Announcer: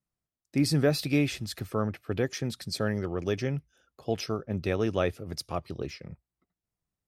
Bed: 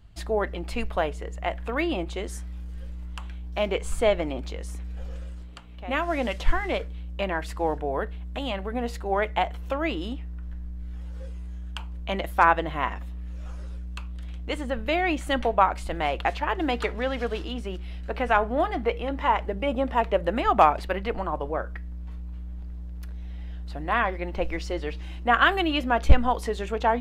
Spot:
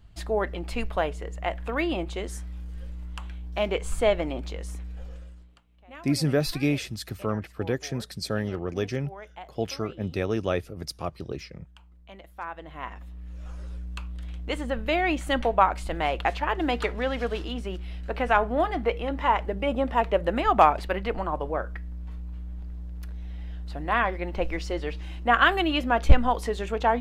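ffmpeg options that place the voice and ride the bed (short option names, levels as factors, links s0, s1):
-filter_complex "[0:a]adelay=5500,volume=1.06[s0];[1:a]volume=7.5,afade=t=out:st=4.71:d=0.93:silence=0.133352,afade=t=in:st=12.51:d=1.31:silence=0.125893[s1];[s0][s1]amix=inputs=2:normalize=0"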